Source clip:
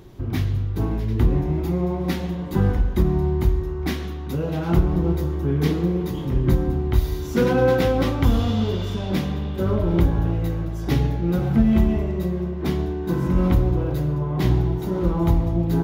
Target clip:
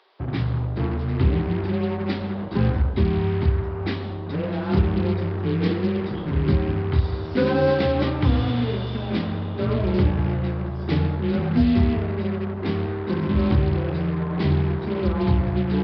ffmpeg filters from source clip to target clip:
-filter_complex "[0:a]acrossover=split=570[a][b];[a]acrusher=bits=4:mix=0:aa=0.5[c];[c][b]amix=inputs=2:normalize=0,afreqshift=22,aresample=11025,aresample=44100,volume=-1.5dB"

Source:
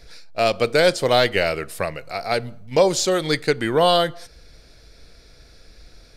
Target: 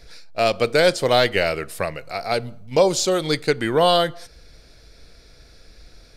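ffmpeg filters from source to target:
-filter_complex "[0:a]asettb=1/sr,asplit=3[a][b][c];[a]atrim=end=2.314[d];[b]atrim=start=2.31:end=3.49,asetpts=PTS-STARTPTS,afade=t=in:d=0.004:c=qsin,afade=t=out:st=1.176:d=0.004:c=qsin,equalizer=f=1.8k:w=3.8:g=-6[e];[c]atrim=start=3.486[f];[d][e]acrossfade=d=0.004:c1=hsin:c2=qsin[g];[g][f]acrossfade=d=0.004:c1=qsin:c2=hsin"

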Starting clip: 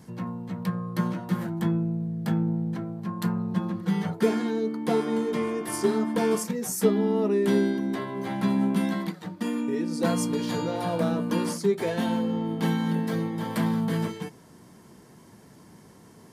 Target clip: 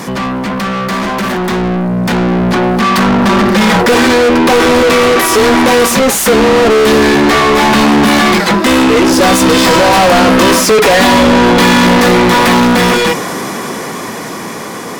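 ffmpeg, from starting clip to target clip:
-filter_complex "[0:a]asplit=2[a][b];[b]highpass=f=720:p=1,volume=43dB,asoftclip=type=tanh:threshold=-8.5dB[c];[a][c]amix=inputs=2:normalize=0,lowpass=f=4.2k:p=1,volume=-6dB,dynaudnorm=f=490:g=11:m=11.5dB,asetrate=48000,aresample=44100"

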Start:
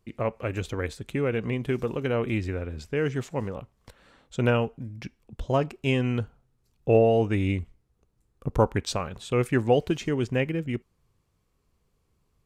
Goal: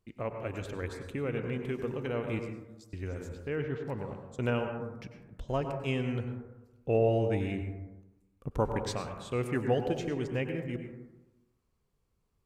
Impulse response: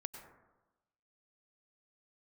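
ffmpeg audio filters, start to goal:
-filter_complex "[0:a]asettb=1/sr,asplit=3[a][b][c];[a]atrim=end=2.394[d];[b]atrim=start=2.39:end=4.39,asetpts=PTS-STARTPTS,afade=t=in:d=0.004:c=qsin,afade=t=out:st=1.996:d=0.004:c=qsin,acrossover=split=4100[e][f];[e]adelay=540[g];[g][f]amix=inputs=2:normalize=0,atrim=end_sample=88200[h];[c]atrim=start=4.386[i];[d][h]acrossfade=d=0.004:c1=hsin:c2=qsin[j];[j][i]acrossfade=d=0.004:c1=qsin:c2=hsin[k];[1:a]atrim=start_sample=2205[l];[k][l]afir=irnorm=-1:irlink=0,volume=-4dB"

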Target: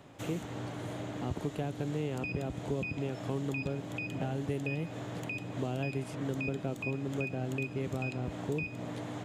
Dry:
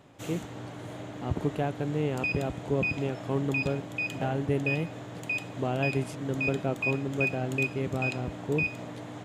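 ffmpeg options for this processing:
-filter_complex "[0:a]acrossover=split=420|3400[a][b][c];[a]acompressor=threshold=-35dB:ratio=4[d];[b]acompressor=threshold=-43dB:ratio=4[e];[c]acompressor=threshold=-54dB:ratio=4[f];[d][e][f]amix=inputs=3:normalize=0,volume=1.5dB"

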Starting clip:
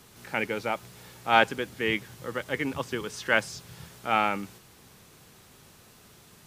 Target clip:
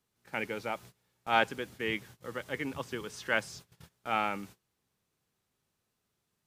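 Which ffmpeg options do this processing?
-af "agate=range=-21dB:threshold=-43dB:ratio=16:detection=peak,volume=-6dB"

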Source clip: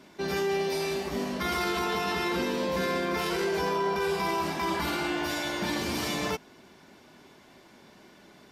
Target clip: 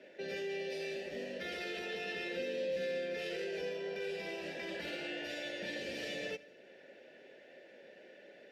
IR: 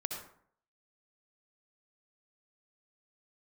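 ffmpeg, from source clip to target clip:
-filter_complex "[0:a]asplit=3[a][b][c];[a]bandpass=f=530:t=q:w=8,volume=0dB[d];[b]bandpass=f=1.84k:t=q:w=8,volume=-6dB[e];[c]bandpass=f=2.48k:t=q:w=8,volume=-9dB[f];[d][e][f]amix=inputs=3:normalize=0,acrossover=split=220|3000[g][h][i];[h]acompressor=threshold=-60dB:ratio=2[j];[g][j][i]amix=inputs=3:normalize=0,asplit=2[k][l];[1:a]atrim=start_sample=2205,adelay=84[m];[l][m]afir=irnorm=-1:irlink=0,volume=-20dB[n];[k][n]amix=inputs=2:normalize=0,volume=10.5dB"

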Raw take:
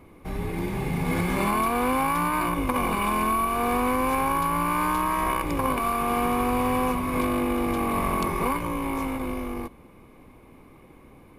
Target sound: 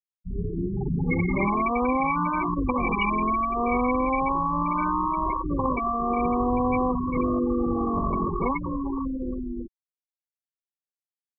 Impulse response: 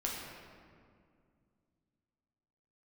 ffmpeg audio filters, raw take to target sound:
-af "afftfilt=real='re*gte(hypot(re,im),0.126)':imag='im*gte(hypot(re,im),0.126)':win_size=1024:overlap=0.75,highshelf=f=2.1k:t=q:w=1.5:g=10.5,volume=2dB"

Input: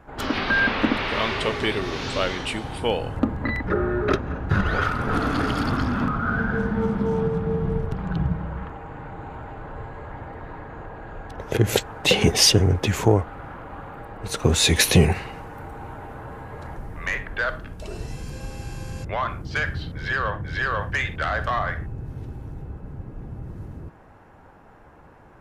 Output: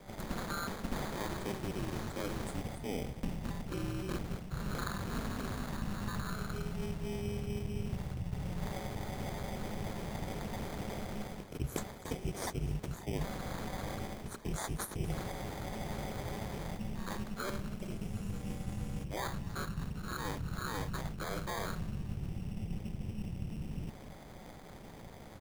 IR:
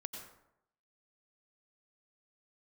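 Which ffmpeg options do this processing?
-filter_complex "[0:a]equalizer=f=2.2k:t=o:w=1:g=-13.5,areverse,acompressor=threshold=-36dB:ratio=6,areverse,asplit=5[a][b][c][d][e];[b]adelay=242,afreqshift=37,volume=-19.5dB[f];[c]adelay=484,afreqshift=74,volume=-24.7dB[g];[d]adelay=726,afreqshift=111,volume=-29.9dB[h];[e]adelay=968,afreqshift=148,volume=-35.1dB[i];[a][f][g][h][i]amix=inputs=5:normalize=0,afreqshift=-140,acrossover=split=6700[j][k];[j]acrusher=samples=16:mix=1:aa=0.000001[l];[l][k]amix=inputs=2:normalize=0,aeval=exprs='val(0)*sin(2*PI*100*n/s)':c=same,volume=3.5dB"

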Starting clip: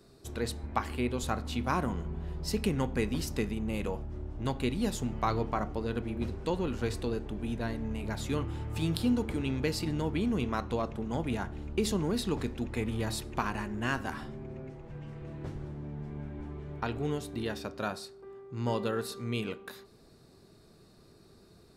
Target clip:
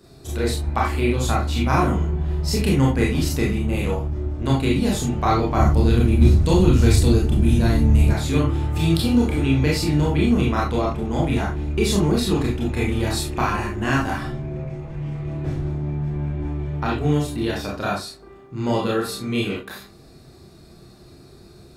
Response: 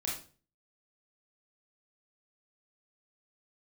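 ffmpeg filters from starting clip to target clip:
-filter_complex "[0:a]asettb=1/sr,asplit=3[a][b][c];[a]atrim=end=5.544[d];[b]atrim=start=5.54:end=8.09,asetpts=PTS-STARTPTS,afade=t=in:d=0.004:c=qsin,afade=t=out:st=2.546:d=0.004:c=qsin,bass=f=250:g=10,treble=f=4k:g=10[e];[c]atrim=start=8.086[f];[d][e]acrossfade=d=0.004:c1=hsin:c2=qsin[g];[g][f]acrossfade=d=0.004:c1=qsin:c2=hsin[h];[1:a]atrim=start_sample=2205,afade=t=out:st=0.15:d=0.01,atrim=end_sample=7056[i];[h][i]afir=irnorm=-1:irlink=0,volume=8dB"

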